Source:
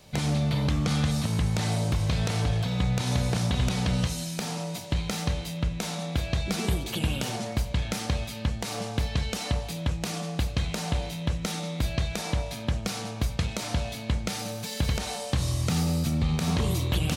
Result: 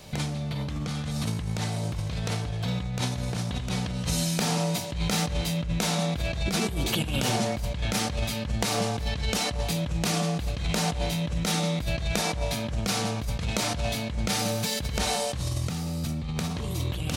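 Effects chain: compressor with a negative ratio -31 dBFS, ratio -1; trim +3 dB

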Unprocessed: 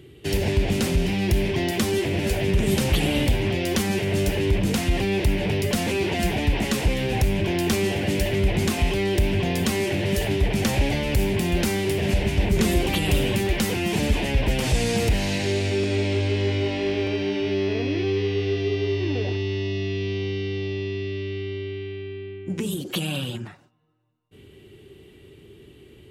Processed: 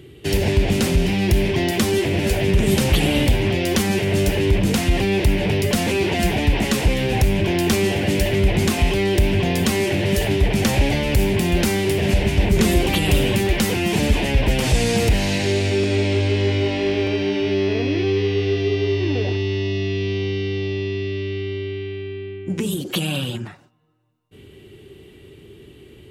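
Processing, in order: trim +4 dB

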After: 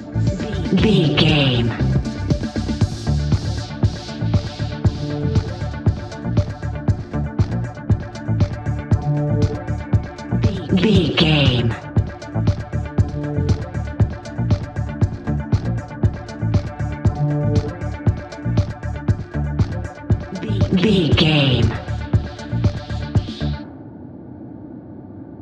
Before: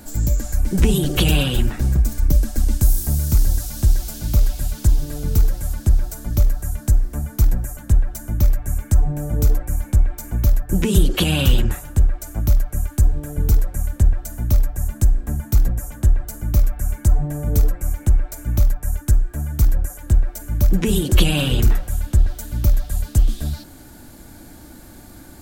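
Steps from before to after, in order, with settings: level-controlled noise filter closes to 480 Hz, open at -12.5 dBFS; elliptic band-pass 100–4600 Hz, stop band 70 dB; in parallel at +2 dB: compression, threshold -29 dBFS, peak gain reduction 14 dB; on the sum: reverse echo 403 ms -12.5 dB; trim +3 dB

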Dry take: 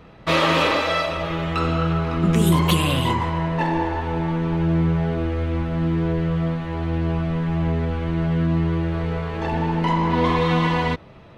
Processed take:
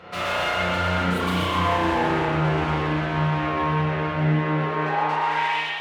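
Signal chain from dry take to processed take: Doppler pass-by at 3.62 s, 24 m/s, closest 9.8 m; hum notches 50/100/150/200/250/300/350 Hz; peak limiter -27.5 dBFS, peak gain reduction 15.5 dB; overdrive pedal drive 33 dB, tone 3.6 kHz, clips at -23 dBFS; high-pass sweep 80 Hz -> 3 kHz, 7.84–10.98 s; time stretch by phase-locked vocoder 0.51×; two-band feedback delay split 1.3 kHz, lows 258 ms, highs 123 ms, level -5 dB; spring tank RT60 1.2 s, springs 33 ms, chirp 65 ms, DRR -5.5 dB

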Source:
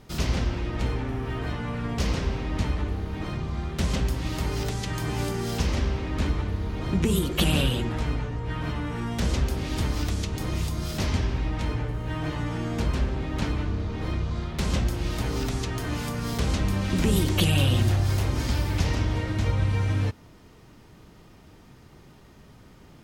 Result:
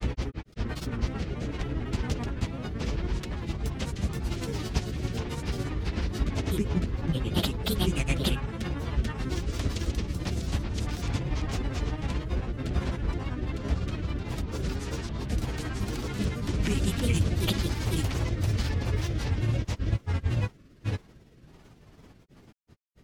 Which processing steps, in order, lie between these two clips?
rotary cabinet horn 6 Hz, later 0.7 Hz, at 6.82 s; granulator 102 ms, grains 18 per s, spray 910 ms, pitch spread up and down by 3 st

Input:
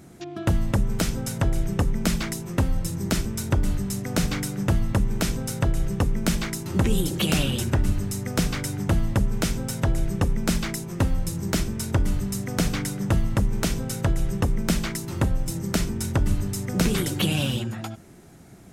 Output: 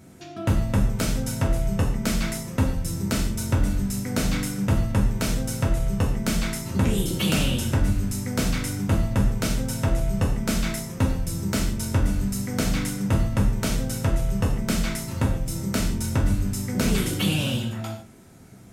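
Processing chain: gated-style reverb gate 180 ms falling, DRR -1 dB; trim -3.5 dB

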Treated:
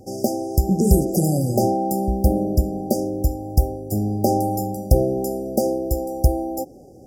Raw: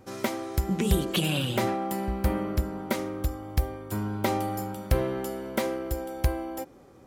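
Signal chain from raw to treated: brick-wall FIR band-stop 820–4700 Hz; trim +8.5 dB; Vorbis 128 kbps 44.1 kHz

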